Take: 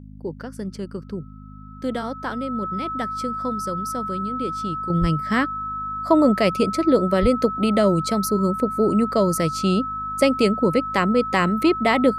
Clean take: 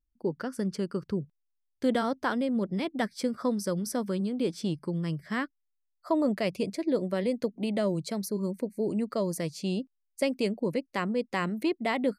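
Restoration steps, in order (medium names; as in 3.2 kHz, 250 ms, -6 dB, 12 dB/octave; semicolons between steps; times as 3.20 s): de-hum 51.4 Hz, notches 5; band-stop 1.3 kHz, Q 30; 4.90 s: gain correction -10 dB; 5.00–5.12 s: high-pass 140 Hz 24 dB/octave; 7.21–7.33 s: high-pass 140 Hz 24 dB/octave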